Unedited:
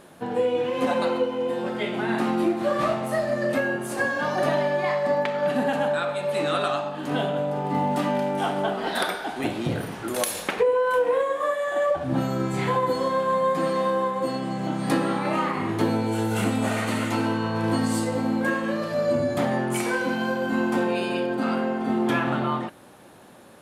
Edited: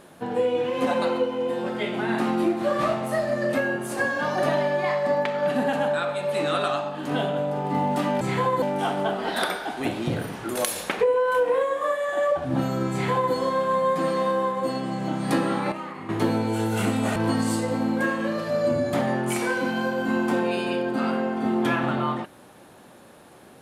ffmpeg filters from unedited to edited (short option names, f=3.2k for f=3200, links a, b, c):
-filter_complex "[0:a]asplit=6[a][b][c][d][e][f];[a]atrim=end=8.212[g];[b]atrim=start=12.508:end=12.922[h];[c]atrim=start=8.208:end=15.312[i];[d]atrim=start=15.308:end=15.682,asetpts=PTS-STARTPTS,volume=-10dB[j];[e]atrim=start=15.678:end=16.752[k];[f]atrim=start=17.598[l];[g][h]acrossfade=d=0.004:c1=hsin:c2=hsin[m];[m][i]acrossfade=d=0.004:c1=hsin:c2=hsin[n];[n][j]acrossfade=d=0.004:c1=hsin:c2=hsin[o];[o][k]acrossfade=d=0.004:c1=hsin:c2=hsin[p];[p][l]acrossfade=d=0.004:c1=hsin:c2=hsin"